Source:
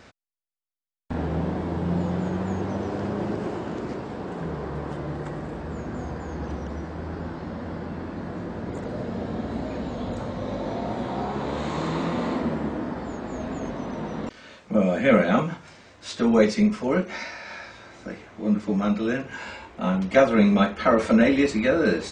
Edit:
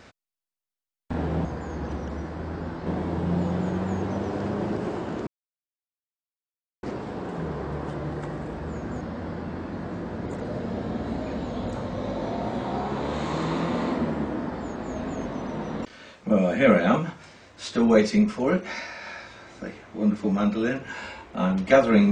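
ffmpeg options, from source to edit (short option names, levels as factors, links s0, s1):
-filter_complex "[0:a]asplit=5[s0][s1][s2][s3][s4];[s0]atrim=end=1.452[s5];[s1]atrim=start=6.038:end=7.452[s6];[s2]atrim=start=1.448:end=3.86,asetpts=PTS-STARTPTS,afade=t=out:st=2.408:d=0.004:c=hsin,apad=pad_dur=1.56[s7];[s3]atrim=start=3.86:end=6.042,asetpts=PTS-STARTPTS,afade=t=in:d=0.004:c=hsin[s8];[s4]atrim=start=7.448[s9];[s5][s6]acrossfade=d=0.004:c1=hsin:c2=hsin[s10];[s7][s8]concat=n=2:v=0:a=1[s11];[s10][s11]acrossfade=d=0.004:c1=hsin:c2=hsin[s12];[s12][s9]acrossfade=d=0.004:c1=hsin:c2=hsin"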